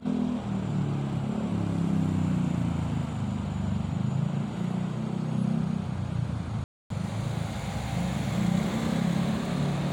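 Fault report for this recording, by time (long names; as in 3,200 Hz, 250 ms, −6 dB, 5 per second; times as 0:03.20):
0:06.64–0:06.90: drop-out 263 ms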